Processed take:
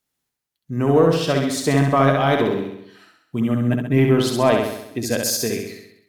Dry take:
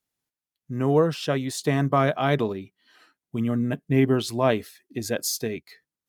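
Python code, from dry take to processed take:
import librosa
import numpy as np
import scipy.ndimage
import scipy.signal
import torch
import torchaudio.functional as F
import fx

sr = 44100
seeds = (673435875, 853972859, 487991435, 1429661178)

p1 = fx.hum_notches(x, sr, base_hz=50, count=3)
p2 = 10.0 ** (-18.0 / 20.0) * np.tanh(p1 / 10.0 ** (-18.0 / 20.0))
p3 = p1 + (p2 * librosa.db_to_amplitude(-10.0))
p4 = fx.echo_feedback(p3, sr, ms=66, feedback_pct=56, wet_db=-4)
y = p4 * librosa.db_to_amplitude(2.0)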